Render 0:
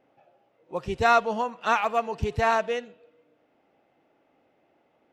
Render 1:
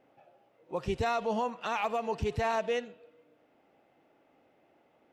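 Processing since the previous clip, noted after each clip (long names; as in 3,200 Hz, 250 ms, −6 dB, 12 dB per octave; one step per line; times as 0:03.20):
dynamic equaliser 1,400 Hz, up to −6 dB, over −36 dBFS, Q 1.9
brickwall limiter −22 dBFS, peak gain reduction 11 dB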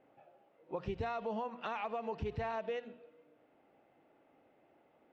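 mains-hum notches 60/120/180/240 Hz
downward compressor, threshold −33 dBFS, peak gain reduction 7 dB
high-frequency loss of the air 210 metres
level −1 dB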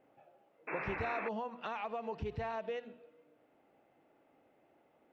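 sound drawn into the spectrogram noise, 0:00.67–0:01.29, 250–2,700 Hz −40 dBFS
level −1 dB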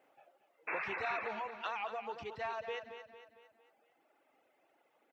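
reverb reduction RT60 1.8 s
high-pass filter 1,100 Hz 6 dB per octave
repeating echo 227 ms, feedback 47%, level −9.5 dB
level +5.5 dB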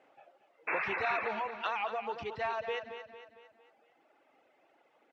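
low-pass filter 5,700 Hz 12 dB per octave
level +5 dB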